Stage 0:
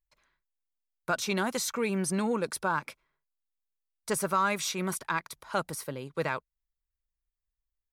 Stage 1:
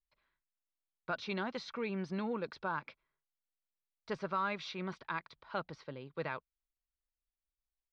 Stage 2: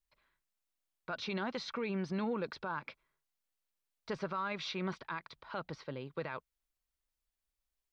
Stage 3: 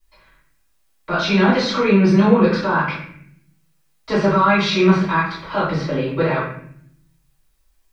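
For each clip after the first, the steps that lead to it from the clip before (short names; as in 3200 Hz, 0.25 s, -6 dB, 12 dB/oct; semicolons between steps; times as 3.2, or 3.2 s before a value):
steep low-pass 4500 Hz 36 dB/oct; gain -8 dB
limiter -32 dBFS, peak gain reduction 8 dB; gain +4 dB
reverb RT60 0.60 s, pre-delay 3 ms, DRR -12.5 dB; gain +5.5 dB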